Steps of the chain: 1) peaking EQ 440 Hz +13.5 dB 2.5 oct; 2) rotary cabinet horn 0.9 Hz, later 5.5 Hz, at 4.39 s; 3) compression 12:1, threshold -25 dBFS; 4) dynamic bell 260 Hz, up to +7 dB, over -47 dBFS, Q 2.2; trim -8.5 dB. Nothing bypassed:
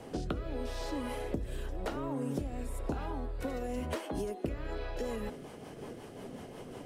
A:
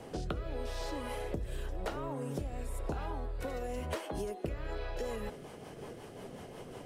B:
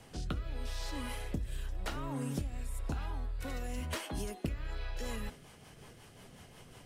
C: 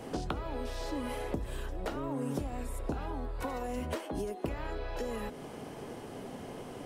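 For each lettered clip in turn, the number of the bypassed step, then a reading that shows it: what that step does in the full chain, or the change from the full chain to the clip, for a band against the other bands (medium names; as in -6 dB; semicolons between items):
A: 4, 250 Hz band -5.0 dB; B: 1, 500 Hz band -9.0 dB; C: 2, 1 kHz band +2.0 dB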